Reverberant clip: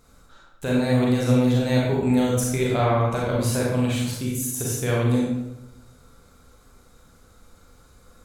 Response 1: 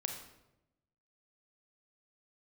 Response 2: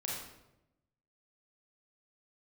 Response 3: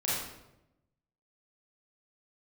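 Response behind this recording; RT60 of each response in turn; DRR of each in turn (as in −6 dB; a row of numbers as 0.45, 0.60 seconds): 2; 0.90, 0.90, 0.90 seconds; 3.5, −4.5, −8.5 decibels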